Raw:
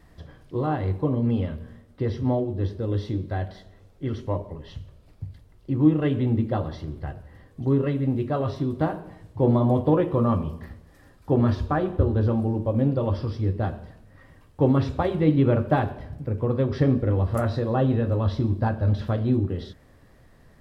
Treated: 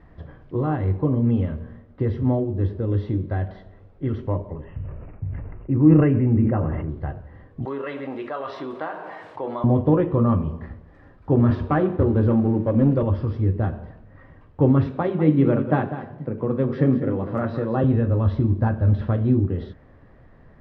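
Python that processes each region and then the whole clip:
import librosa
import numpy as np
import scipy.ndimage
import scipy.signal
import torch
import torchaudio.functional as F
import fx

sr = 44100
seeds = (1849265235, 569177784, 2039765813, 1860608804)

y = fx.chain(x, sr, fx.steep_lowpass(hz=2800.0, slope=96),
    fx.sustainer(db_per_s=33.0), at=(4.64, 6.89))
y = fx.chain(y, sr, fx.highpass(hz=770.0, slope=12),
    fx.high_shelf(hz=4400.0, db=5.5),
    fx.env_flatten(amount_pct=50), at=(7.65, 9.64))
y = fx.chain(y, sr, fx.highpass(hz=130.0, slope=12),
    fx.leveller(passes=1), at=(11.5, 13.03))
y = fx.chain(y, sr, fx.highpass(hz=140.0, slope=24),
    fx.echo_single(ms=197, db=-11.0), at=(14.86, 17.84))
y = scipy.signal.sosfilt(scipy.signal.butter(2, 1900.0, 'lowpass', fs=sr, output='sos'), y)
y = fx.dynamic_eq(y, sr, hz=730.0, q=0.83, threshold_db=-35.0, ratio=4.0, max_db=-5)
y = F.gain(torch.from_numpy(y), 4.0).numpy()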